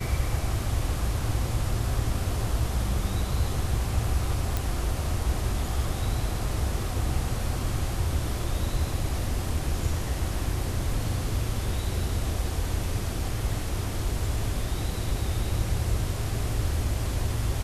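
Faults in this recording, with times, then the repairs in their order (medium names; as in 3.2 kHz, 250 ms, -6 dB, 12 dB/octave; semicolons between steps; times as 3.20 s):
4.57 s: pop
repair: de-click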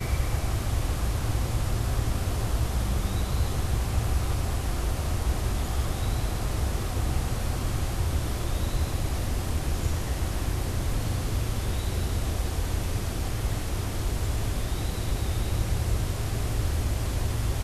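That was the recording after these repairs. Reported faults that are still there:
nothing left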